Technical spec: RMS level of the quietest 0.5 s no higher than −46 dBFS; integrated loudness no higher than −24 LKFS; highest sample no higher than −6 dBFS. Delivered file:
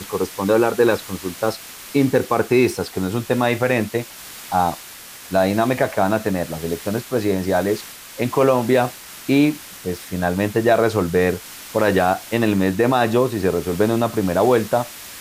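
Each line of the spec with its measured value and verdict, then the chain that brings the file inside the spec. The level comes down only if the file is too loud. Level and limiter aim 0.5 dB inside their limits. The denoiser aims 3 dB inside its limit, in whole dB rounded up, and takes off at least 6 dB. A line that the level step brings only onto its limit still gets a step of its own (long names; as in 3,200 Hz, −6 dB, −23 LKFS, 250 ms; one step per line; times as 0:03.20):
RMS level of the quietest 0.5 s −39 dBFS: out of spec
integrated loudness −20.0 LKFS: out of spec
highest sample −4.5 dBFS: out of spec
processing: broadband denoise 6 dB, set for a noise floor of −39 dBFS
level −4.5 dB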